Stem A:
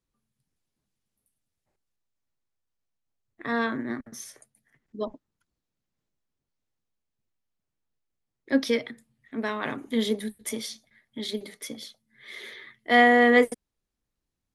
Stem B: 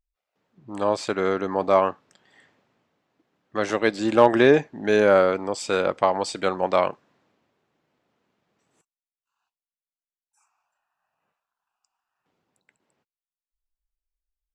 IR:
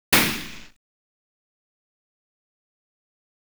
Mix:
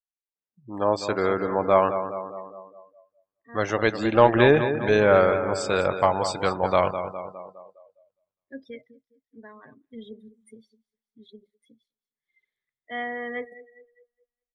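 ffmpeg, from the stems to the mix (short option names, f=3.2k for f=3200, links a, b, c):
-filter_complex "[0:a]volume=-13dB,asplit=2[a][b];[b]volume=-15dB[c];[1:a]volume=0.5dB,asplit=3[d][e][f];[e]volume=-9.5dB[g];[f]apad=whole_len=641332[h];[a][h]sidechaincompress=threshold=-36dB:ratio=8:attack=26:release=1190[i];[c][g]amix=inputs=2:normalize=0,aecho=0:1:205|410|615|820|1025|1230|1435|1640|1845:1|0.58|0.336|0.195|0.113|0.0656|0.0381|0.0221|0.0128[j];[i][d][j]amix=inputs=3:normalize=0,afftdn=nr=32:nf=-38,asubboost=boost=6.5:cutoff=95"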